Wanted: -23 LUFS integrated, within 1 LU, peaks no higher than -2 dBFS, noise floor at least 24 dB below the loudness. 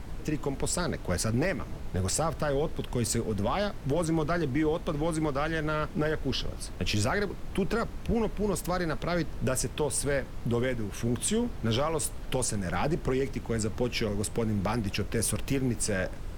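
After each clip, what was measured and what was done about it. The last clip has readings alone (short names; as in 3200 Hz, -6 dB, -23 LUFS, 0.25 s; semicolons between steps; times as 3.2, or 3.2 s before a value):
noise floor -40 dBFS; noise floor target -54 dBFS; loudness -30.0 LUFS; peak -16.5 dBFS; loudness target -23.0 LUFS
-> noise print and reduce 14 dB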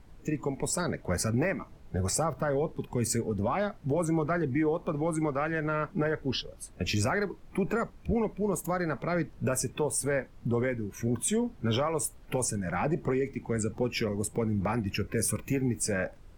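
noise floor -52 dBFS; noise floor target -55 dBFS
-> noise print and reduce 6 dB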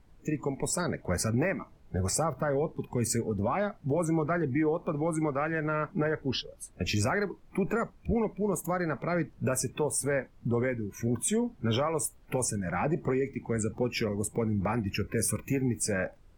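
noise floor -57 dBFS; loudness -30.5 LUFS; peak -18.5 dBFS; loudness target -23.0 LUFS
-> gain +7.5 dB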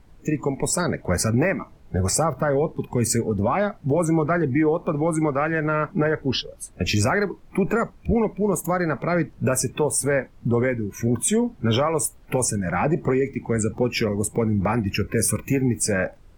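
loudness -23.0 LUFS; peak -11.0 dBFS; noise floor -50 dBFS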